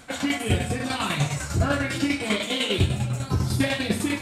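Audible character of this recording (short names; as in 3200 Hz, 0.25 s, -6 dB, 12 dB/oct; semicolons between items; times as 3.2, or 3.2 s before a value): tremolo saw down 10 Hz, depth 60%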